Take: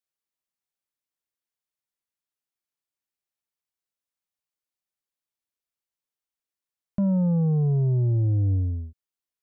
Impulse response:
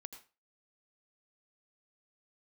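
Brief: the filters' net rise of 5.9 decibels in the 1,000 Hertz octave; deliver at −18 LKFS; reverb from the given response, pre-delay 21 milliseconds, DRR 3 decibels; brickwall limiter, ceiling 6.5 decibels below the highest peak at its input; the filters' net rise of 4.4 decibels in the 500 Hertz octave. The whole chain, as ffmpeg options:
-filter_complex "[0:a]equalizer=frequency=500:width_type=o:gain=4,equalizer=frequency=1000:width_type=o:gain=6,alimiter=limit=-24dB:level=0:latency=1,asplit=2[link_01][link_02];[1:a]atrim=start_sample=2205,adelay=21[link_03];[link_02][link_03]afir=irnorm=-1:irlink=0,volume=2dB[link_04];[link_01][link_04]amix=inputs=2:normalize=0,volume=8dB"

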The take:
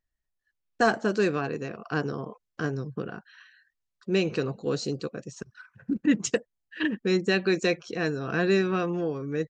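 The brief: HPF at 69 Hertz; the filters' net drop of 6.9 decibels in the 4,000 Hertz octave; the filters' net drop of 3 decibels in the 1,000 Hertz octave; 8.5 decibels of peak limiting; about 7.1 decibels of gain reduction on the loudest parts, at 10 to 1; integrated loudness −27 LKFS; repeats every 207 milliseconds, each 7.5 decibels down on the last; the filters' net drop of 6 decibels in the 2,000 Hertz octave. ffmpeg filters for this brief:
ffmpeg -i in.wav -af "highpass=69,equalizer=frequency=1000:width_type=o:gain=-3,equalizer=frequency=2000:width_type=o:gain=-5.5,equalizer=frequency=4000:width_type=o:gain=-6.5,acompressor=threshold=-25dB:ratio=10,alimiter=level_in=0.5dB:limit=-24dB:level=0:latency=1,volume=-0.5dB,aecho=1:1:207|414|621|828|1035:0.422|0.177|0.0744|0.0312|0.0131,volume=7.5dB" out.wav

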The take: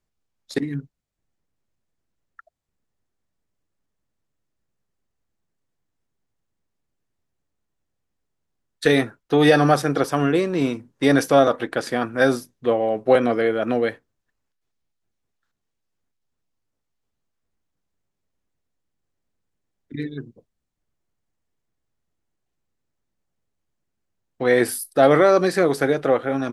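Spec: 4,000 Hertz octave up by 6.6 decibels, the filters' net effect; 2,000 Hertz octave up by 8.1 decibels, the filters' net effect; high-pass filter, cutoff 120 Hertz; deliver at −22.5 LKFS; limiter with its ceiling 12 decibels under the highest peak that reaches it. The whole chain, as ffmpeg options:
ffmpeg -i in.wav -af "highpass=120,equalizer=frequency=2000:width_type=o:gain=9,equalizer=frequency=4000:width_type=o:gain=5,volume=1dB,alimiter=limit=-11dB:level=0:latency=1" out.wav

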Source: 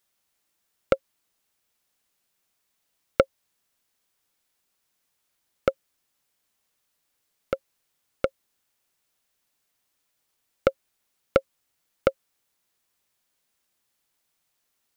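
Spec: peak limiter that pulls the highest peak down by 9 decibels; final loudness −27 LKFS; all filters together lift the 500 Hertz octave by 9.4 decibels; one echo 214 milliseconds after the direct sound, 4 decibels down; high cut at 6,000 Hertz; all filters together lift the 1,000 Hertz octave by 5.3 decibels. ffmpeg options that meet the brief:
ffmpeg -i in.wav -af "lowpass=6000,equalizer=frequency=500:width_type=o:gain=8.5,equalizer=frequency=1000:width_type=o:gain=6.5,alimiter=limit=-4dB:level=0:latency=1,aecho=1:1:214:0.631,volume=-0.5dB" out.wav

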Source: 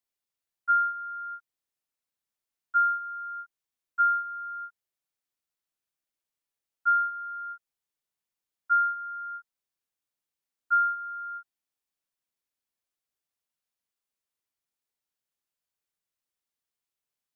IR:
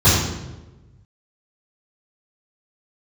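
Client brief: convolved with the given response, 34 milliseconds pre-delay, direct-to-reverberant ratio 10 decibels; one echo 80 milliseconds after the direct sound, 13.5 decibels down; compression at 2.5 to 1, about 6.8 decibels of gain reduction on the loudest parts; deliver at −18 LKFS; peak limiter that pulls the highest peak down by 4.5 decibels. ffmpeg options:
-filter_complex "[0:a]acompressor=threshold=-30dB:ratio=2.5,alimiter=level_in=3dB:limit=-24dB:level=0:latency=1,volume=-3dB,aecho=1:1:80:0.211,asplit=2[link_01][link_02];[1:a]atrim=start_sample=2205,adelay=34[link_03];[link_02][link_03]afir=irnorm=-1:irlink=0,volume=-33dB[link_04];[link_01][link_04]amix=inputs=2:normalize=0,volume=16dB"

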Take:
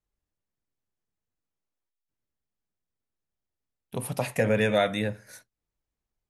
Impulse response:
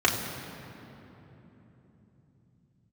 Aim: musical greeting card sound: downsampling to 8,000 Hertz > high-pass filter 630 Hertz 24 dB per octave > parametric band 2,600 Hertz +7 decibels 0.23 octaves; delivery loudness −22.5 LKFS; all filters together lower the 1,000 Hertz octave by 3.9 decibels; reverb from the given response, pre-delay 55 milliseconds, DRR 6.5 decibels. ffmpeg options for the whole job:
-filter_complex "[0:a]equalizer=frequency=1000:width_type=o:gain=-5,asplit=2[link_01][link_02];[1:a]atrim=start_sample=2205,adelay=55[link_03];[link_02][link_03]afir=irnorm=-1:irlink=0,volume=-22dB[link_04];[link_01][link_04]amix=inputs=2:normalize=0,aresample=8000,aresample=44100,highpass=frequency=630:width=0.5412,highpass=frequency=630:width=1.3066,equalizer=frequency=2600:width_type=o:width=0.23:gain=7,volume=7.5dB"

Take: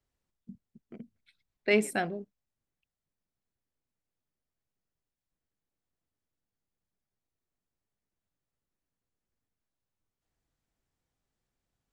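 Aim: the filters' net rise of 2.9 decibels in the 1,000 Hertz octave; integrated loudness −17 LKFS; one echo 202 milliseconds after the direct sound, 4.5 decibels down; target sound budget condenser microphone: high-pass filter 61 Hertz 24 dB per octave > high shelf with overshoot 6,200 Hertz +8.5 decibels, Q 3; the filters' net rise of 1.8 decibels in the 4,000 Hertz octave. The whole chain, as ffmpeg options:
ffmpeg -i in.wav -af "highpass=frequency=61:width=0.5412,highpass=frequency=61:width=1.3066,equalizer=frequency=1000:width_type=o:gain=5,equalizer=frequency=4000:width_type=o:gain=6.5,highshelf=frequency=6200:width_type=q:width=3:gain=8.5,aecho=1:1:202:0.596,volume=9dB" out.wav

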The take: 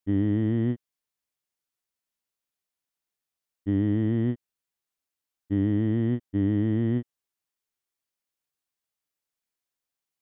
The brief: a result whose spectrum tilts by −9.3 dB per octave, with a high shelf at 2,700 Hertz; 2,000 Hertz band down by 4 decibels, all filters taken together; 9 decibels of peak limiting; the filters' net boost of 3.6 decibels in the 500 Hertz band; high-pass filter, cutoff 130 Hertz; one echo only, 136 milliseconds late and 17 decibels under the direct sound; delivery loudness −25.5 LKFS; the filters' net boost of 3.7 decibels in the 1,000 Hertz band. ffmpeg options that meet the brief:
ffmpeg -i in.wav -af "highpass=130,equalizer=frequency=500:width_type=o:gain=5.5,equalizer=frequency=1000:width_type=o:gain=3.5,equalizer=frequency=2000:width_type=o:gain=-6.5,highshelf=frequency=2700:gain=3,alimiter=level_in=0.5dB:limit=-24dB:level=0:latency=1,volume=-0.5dB,aecho=1:1:136:0.141,volume=8dB" out.wav

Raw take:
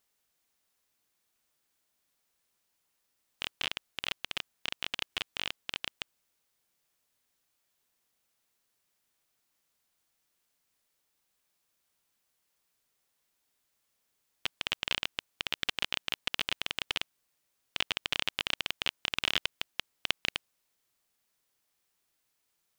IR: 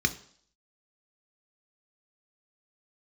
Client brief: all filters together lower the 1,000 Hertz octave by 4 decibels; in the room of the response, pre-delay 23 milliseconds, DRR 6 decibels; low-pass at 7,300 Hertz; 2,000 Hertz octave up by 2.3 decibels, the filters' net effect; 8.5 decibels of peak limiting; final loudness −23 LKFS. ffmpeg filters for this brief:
-filter_complex "[0:a]lowpass=7300,equalizer=frequency=1000:width_type=o:gain=-7,equalizer=frequency=2000:width_type=o:gain=4.5,alimiter=limit=-13dB:level=0:latency=1,asplit=2[link_01][link_02];[1:a]atrim=start_sample=2205,adelay=23[link_03];[link_02][link_03]afir=irnorm=-1:irlink=0,volume=-16dB[link_04];[link_01][link_04]amix=inputs=2:normalize=0,volume=11dB"

